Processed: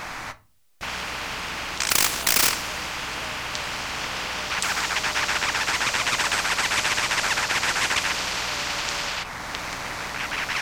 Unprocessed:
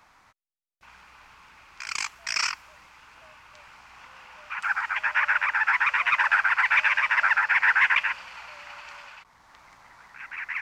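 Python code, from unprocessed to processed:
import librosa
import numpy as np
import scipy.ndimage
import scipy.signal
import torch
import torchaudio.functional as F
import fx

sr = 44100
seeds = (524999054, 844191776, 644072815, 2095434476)

y = fx.leveller(x, sr, passes=2, at=(1.9, 2.49))
y = fx.room_shoebox(y, sr, seeds[0], volume_m3=150.0, walls='furnished', distance_m=0.43)
y = fx.spectral_comp(y, sr, ratio=4.0)
y = F.gain(torch.from_numpy(y), 6.0).numpy()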